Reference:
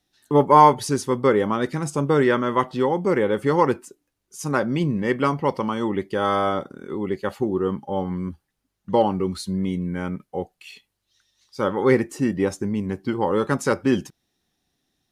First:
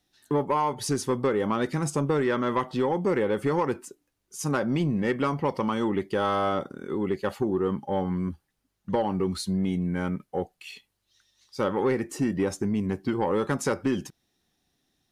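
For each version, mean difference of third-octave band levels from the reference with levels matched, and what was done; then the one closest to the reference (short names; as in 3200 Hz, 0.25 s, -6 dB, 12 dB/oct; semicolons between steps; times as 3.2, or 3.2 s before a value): 3.0 dB: compressor 16:1, threshold -19 dBFS, peak gain reduction 13 dB; soft clip -15.5 dBFS, distortion -20 dB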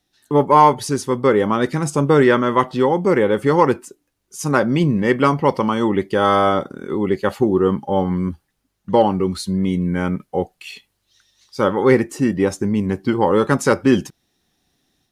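1.0 dB: in parallel at -10 dB: soft clip -10.5 dBFS, distortion -14 dB; on the sum: AGC gain up to 5 dB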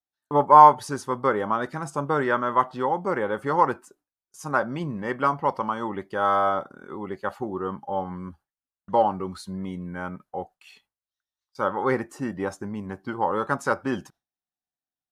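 4.0 dB: gate with hold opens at -37 dBFS; band shelf 990 Hz +9.5 dB; gain -8 dB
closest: second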